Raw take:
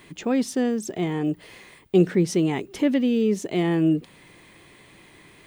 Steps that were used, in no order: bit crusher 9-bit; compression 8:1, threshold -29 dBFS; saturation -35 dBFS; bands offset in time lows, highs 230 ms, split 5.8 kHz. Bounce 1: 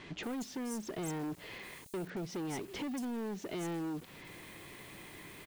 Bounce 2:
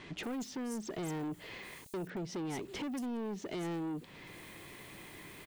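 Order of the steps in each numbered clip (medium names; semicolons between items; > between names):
compression > saturation > bit crusher > bands offset in time; bit crusher > compression > bands offset in time > saturation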